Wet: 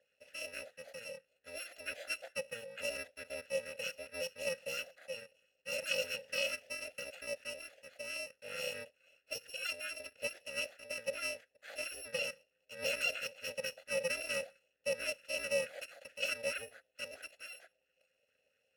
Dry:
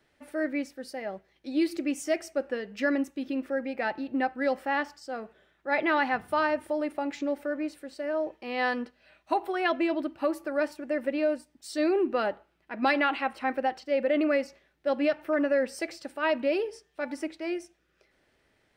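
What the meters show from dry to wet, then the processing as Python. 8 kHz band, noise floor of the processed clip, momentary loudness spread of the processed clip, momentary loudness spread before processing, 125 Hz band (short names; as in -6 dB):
+3.5 dB, -80 dBFS, 13 LU, 11 LU, n/a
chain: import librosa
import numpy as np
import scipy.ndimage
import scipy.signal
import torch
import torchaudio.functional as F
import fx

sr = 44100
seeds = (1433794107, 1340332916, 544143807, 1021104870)

y = fx.bit_reversed(x, sr, seeds[0], block=128)
y = fx.vowel_filter(y, sr, vowel='e')
y = fx.bell_lfo(y, sr, hz=4.5, low_hz=600.0, high_hz=1600.0, db=10)
y = y * 10.0 ** (10.0 / 20.0)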